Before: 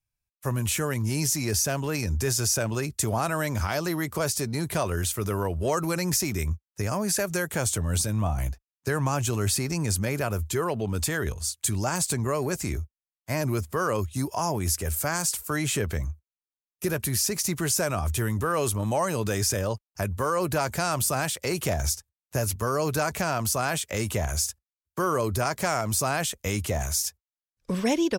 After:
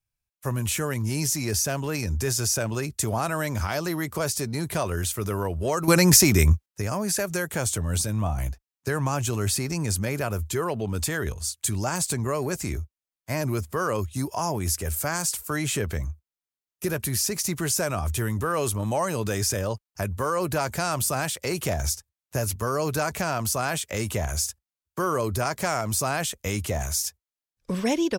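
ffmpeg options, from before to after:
-filter_complex "[0:a]asplit=3[a][b][c];[a]atrim=end=5.882[d];[b]atrim=start=5.878:end=6.662,asetpts=PTS-STARTPTS,volume=10dB[e];[c]atrim=start=6.658[f];[d][e]acrossfade=d=0.004:c1=hsin:c2=hsin[g];[g][f]acrossfade=d=0.004:c1=hsin:c2=hsin"

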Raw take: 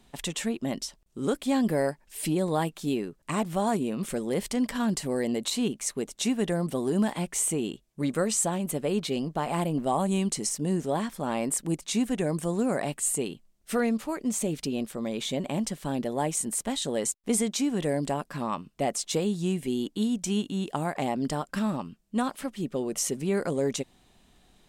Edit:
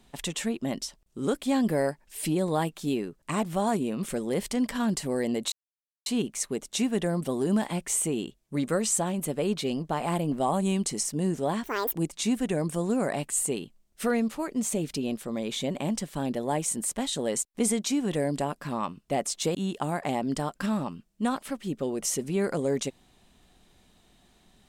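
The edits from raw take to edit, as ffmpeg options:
-filter_complex "[0:a]asplit=5[a][b][c][d][e];[a]atrim=end=5.52,asetpts=PTS-STARTPTS,afade=t=out:st=5.516:d=0.004:c=hsin,apad=pad_dur=0.54[f];[b]atrim=start=5.52:end=11.104,asetpts=PTS-STARTPTS,afade=t=in:d=0.004:c=hsin[g];[c]atrim=start=11.1:end=11.64,asetpts=PTS-STARTPTS,asetrate=77175,aresample=44100[h];[d]atrim=start=11.636:end=19.242[i];[e]atrim=start=20.478[j];[f][g]concat=n=2:v=0:a=1[k];[k][h]acrossfade=d=0.004:c1=hsin:c2=hsin[l];[l][i]acrossfade=d=0.004:c1=hsin:c2=hsin[m];[m][j]acrossfade=d=0.004:c1=hsin:c2=hsin"

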